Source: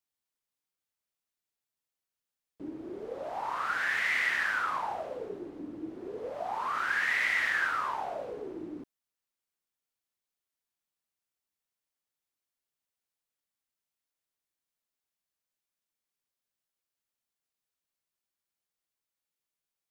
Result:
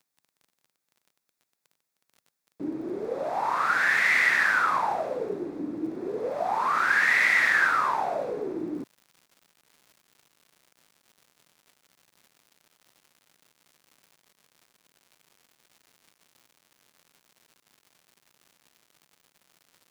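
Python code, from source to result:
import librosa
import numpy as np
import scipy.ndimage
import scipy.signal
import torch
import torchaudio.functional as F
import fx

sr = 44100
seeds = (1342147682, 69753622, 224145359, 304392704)

y = fx.peak_eq(x, sr, hz=3000.0, db=-9.5, octaves=0.21)
y = fx.dmg_crackle(y, sr, seeds[0], per_s=fx.steps((0.0, 21.0), (8.75, 240.0)), level_db=-53.0)
y = fx.low_shelf_res(y, sr, hz=110.0, db=-7.0, q=1.5)
y = y * 10.0 ** (7.5 / 20.0)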